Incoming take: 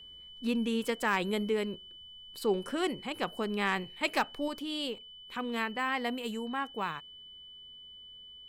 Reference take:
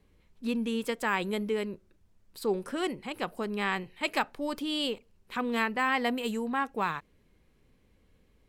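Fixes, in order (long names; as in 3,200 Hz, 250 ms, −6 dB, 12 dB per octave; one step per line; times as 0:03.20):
clipped peaks rebuilt −18.5 dBFS
notch filter 3,000 Hz, Q 30
level 0 dB, from 0:04.48 +4.5 dB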